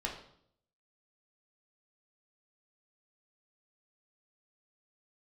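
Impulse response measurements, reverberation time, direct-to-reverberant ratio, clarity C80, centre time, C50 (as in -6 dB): 0.65 s, -2.0 dB, 9.5 dB, 28 ms, 6.5 dB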